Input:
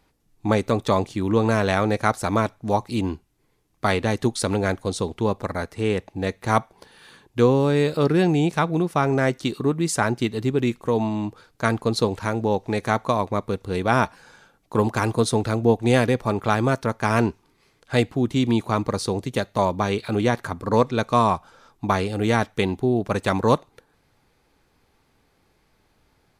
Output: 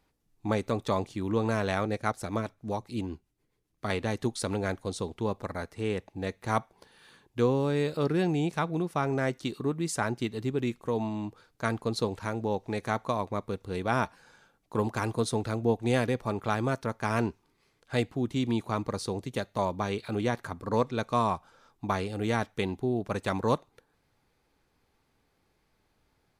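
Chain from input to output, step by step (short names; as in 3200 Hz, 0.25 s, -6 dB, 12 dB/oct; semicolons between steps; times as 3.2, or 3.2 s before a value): 1.85–3.9 rotary speaker horn 7.5 Hz; gain -8 dB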